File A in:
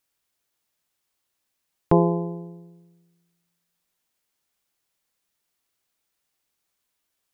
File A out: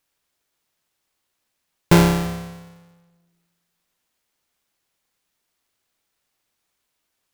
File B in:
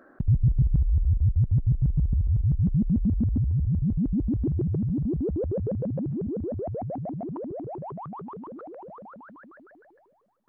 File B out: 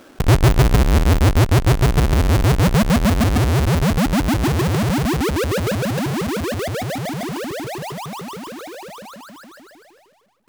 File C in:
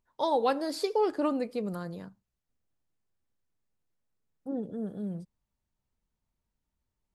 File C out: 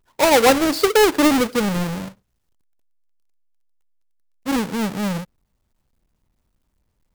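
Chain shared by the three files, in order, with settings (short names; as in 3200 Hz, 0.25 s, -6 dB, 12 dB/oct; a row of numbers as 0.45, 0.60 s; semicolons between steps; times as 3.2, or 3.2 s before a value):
half-waves squared off; match loudness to -18 LUFS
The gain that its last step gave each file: -0.5, +4.5, +9.0 dB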